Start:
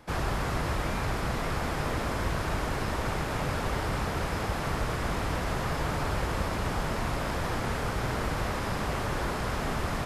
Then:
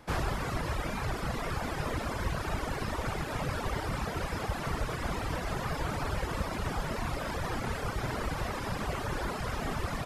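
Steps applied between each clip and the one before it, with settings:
reverb reduction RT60 1.5 s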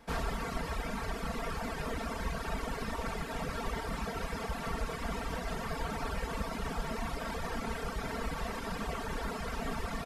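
comb filter 4.4 ms, depth 72%
level −4.5 dB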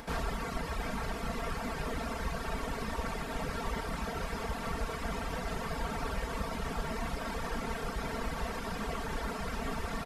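upward compression, threshold −38 dBFS
single-tap delay 726 ms −8.5 dB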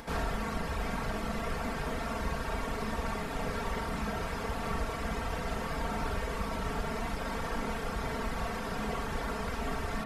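convolution reverb, pre-delay 42 ms, DRR 3.5 dB

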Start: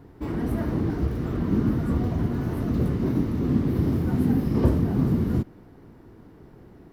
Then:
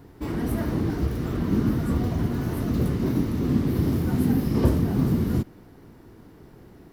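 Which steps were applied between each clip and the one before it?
high-shelf EQ 3,000 Hz +9 dB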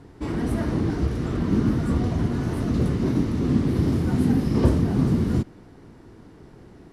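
low-pass filter 10,000 Hz 24 dB per octave
level +1.5 dB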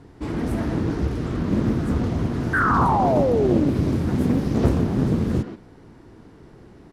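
far-end echo of a speakerphone 130 ms, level −6 dB
sound drawn into the spectrogram fall, 0:02.53–0:03.70, 270–1,600 Hz −20 dBFS
highs frequency-modulated by the lows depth 0.91 ms

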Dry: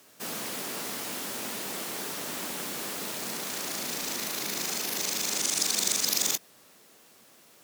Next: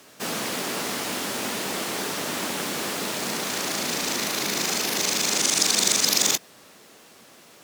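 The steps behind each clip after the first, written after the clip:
high-shelf EQ 10,000 Hz −10 dB
level +8.5 dB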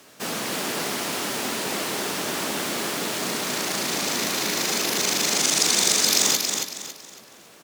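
repeating echo 277 ms, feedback 33%, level −5 dB

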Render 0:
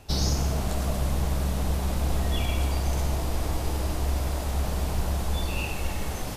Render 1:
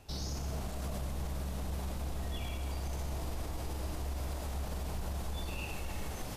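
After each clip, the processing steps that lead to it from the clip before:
brickwall limiter −22.5 dBFS, peak gain reduction 8.5 dB
level −7 dB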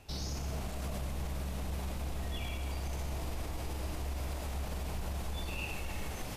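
parametric band 2,400 Hz +4 dB 0.79 octaves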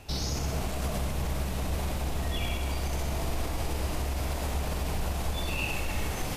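flutter between parallel walls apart 11.1 metres, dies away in 0.45 s
level +7.5 dB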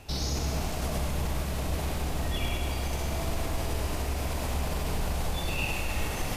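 feedback echo at a low word length 101 ms, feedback 80%, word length 10 bits, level −10 dB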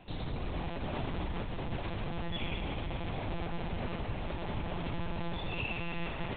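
one-pitch LPC vocoder at 8 kHz 170 Hz
level −6 dB

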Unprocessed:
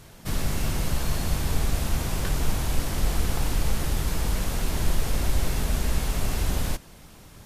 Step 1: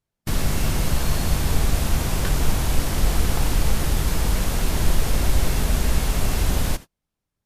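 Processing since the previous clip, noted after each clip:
noise gate −34 dBFS, range −40 dB
level +4.5 dB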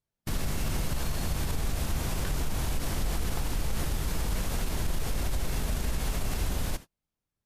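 brickwall limiter −14.5 dBFS, peak gain reduction 9.5 dB
level −6 dB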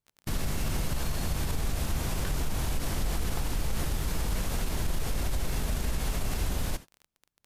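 surface crackle 40 per second −38 dBFS

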